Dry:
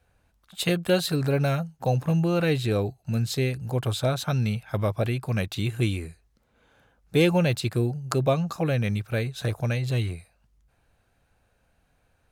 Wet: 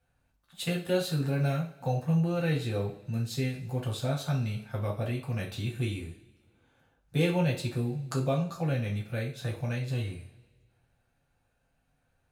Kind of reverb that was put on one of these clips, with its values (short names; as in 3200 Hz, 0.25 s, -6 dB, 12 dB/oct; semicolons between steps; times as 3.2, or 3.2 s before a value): two-slope reverb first 0.34 s, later 1.7 s, from -21 dB, DRR -2.5 dB; gain -11 dB